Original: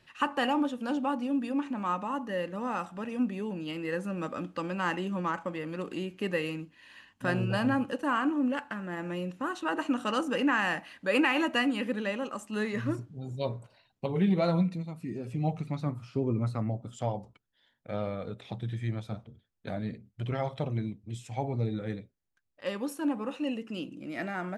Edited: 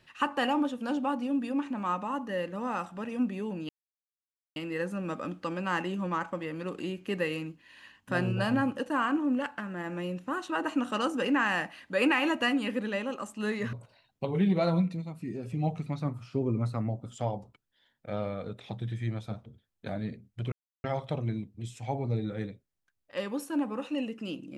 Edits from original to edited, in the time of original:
3.69 insert silence 0.87 s
12.86–13.54 cut
20.33 insert silence 0.32 s

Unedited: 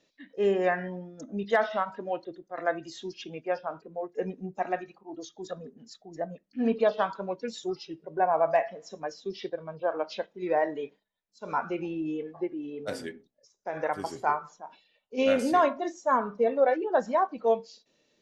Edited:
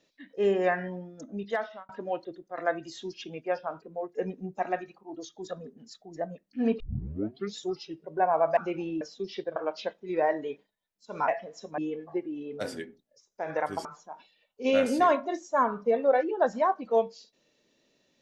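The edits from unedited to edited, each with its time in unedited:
0.9–1.89 fade out equal-power
6.8 tape start 0.78 s
8.57–9.07 swap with 11.61–12.05
9.62–9.89 cut
14.12–14.38 cut

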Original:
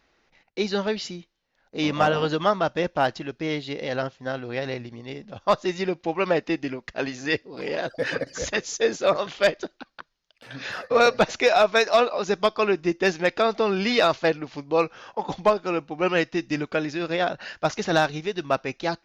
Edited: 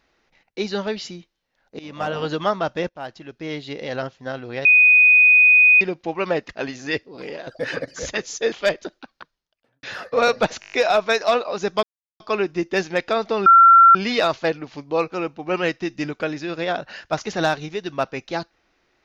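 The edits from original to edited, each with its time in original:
1.79–2.33 fade in, from -21 dB
2.89–3.72 fade in, from -17.5 dB
4.65–5.81 bleep 2490 Hz -9 dBFS
6.49–6.88 cut
7.55–7.86 fade out, to -11 dB
8.91–9.3 cut
9.95–10.61 studio fade out
11.38 stutter 0.02 s, 7 plays
12.49 insert silence 0.37 s
13.75 add tone 1360 Hz -6.5 dBFS 0.49 s
14.92–15.64 cut

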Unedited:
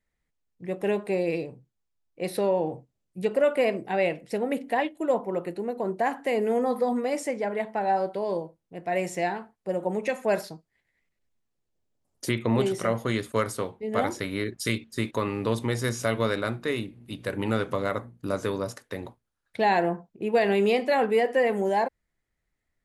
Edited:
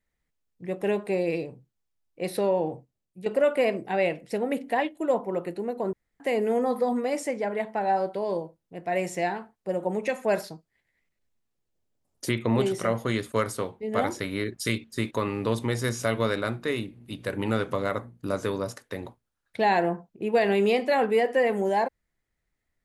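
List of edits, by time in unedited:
2.66–3.26 fade out, to -9.5 dB
5.93–6.2 room tone

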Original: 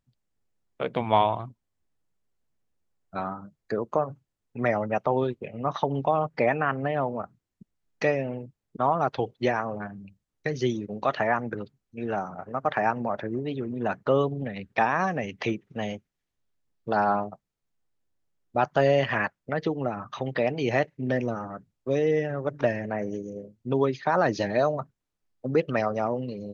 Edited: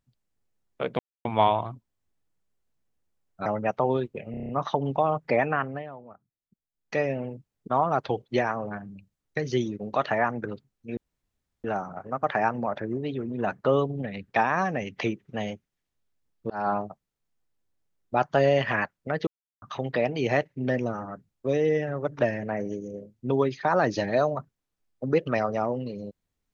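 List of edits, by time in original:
0.99 insert silence 0.26 s
3.2–4.73 cut
5.58 stutter 0.03 s, 7 plays
6.63–8.18 dip -15.5 dB, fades 0.36 s
12.06 insert room tone 0.67 s
16.92–17.25 fade in equal-power
19.69–20.04 mute

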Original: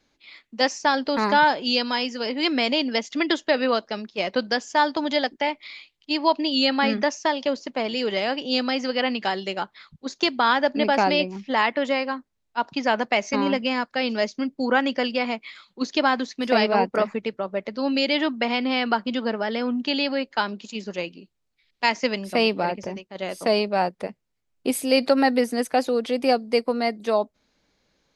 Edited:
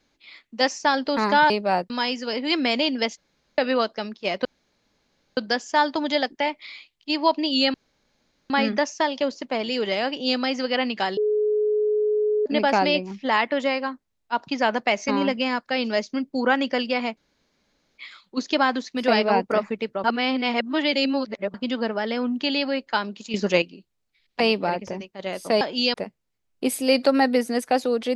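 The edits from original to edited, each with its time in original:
1.5–1.83 swap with 23.57–23.97
3.1–3.51 room tone
4.38 insert room tone 0.92 s
6.75 insert room tone 0.76 s
9.42–10.71 bleep 423 Hz -18.5 dBFS
15.42 insert room tone 0.81 s
17.48–18.98 reverse
20.78–21.06 gain +9.5 dB
21.84–22.36 cut

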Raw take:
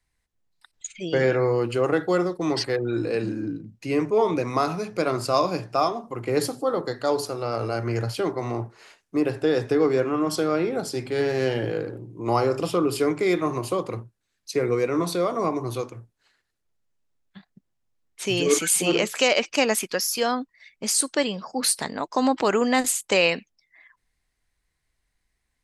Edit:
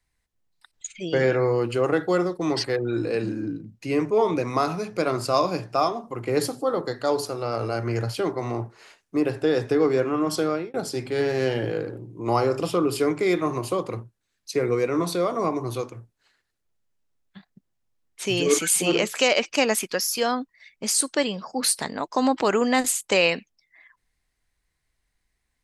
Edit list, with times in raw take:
10.47–10.74 fade out

